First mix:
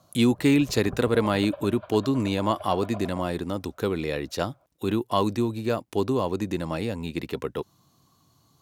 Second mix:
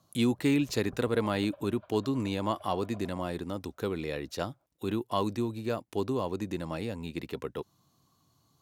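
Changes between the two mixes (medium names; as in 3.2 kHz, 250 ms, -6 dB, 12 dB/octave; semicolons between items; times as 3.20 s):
speech -6.0 dB; background -12.0 dB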